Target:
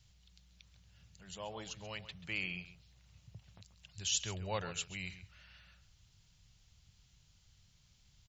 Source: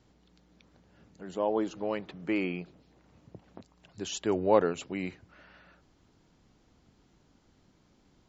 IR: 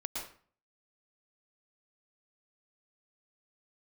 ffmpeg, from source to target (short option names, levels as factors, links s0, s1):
-filter_complex "[0:a]firequalizer=gain_entry='entry(110,0);entry(270,-27);entry(570,-18);entry(2800,1);entry(6200,3)':delay=0.05:min_phase=1,asplit=2[s0][s1];[s1]adelay=134.1,volume=0.224,highshelf=f=4000:g=-3.02[s2];[s0][s2]amix=inputs=2:normalize=0,volume=1.26"